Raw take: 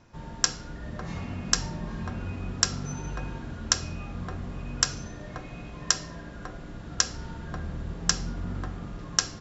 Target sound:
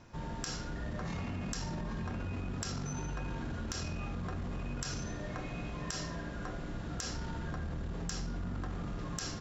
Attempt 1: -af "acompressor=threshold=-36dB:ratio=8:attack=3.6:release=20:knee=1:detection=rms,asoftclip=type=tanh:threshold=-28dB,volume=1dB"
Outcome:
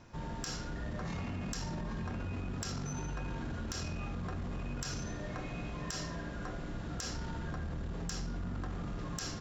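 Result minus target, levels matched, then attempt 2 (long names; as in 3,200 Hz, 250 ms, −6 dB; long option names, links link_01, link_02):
soft clipping: distortion +11 dB
-af "acompressor=threshold=-36dB:ratio=8:attack=3.6:release=20:knee=1:detection=rms,asoftclip=type=tanh:threshold=-20.5dB,volume=1dB"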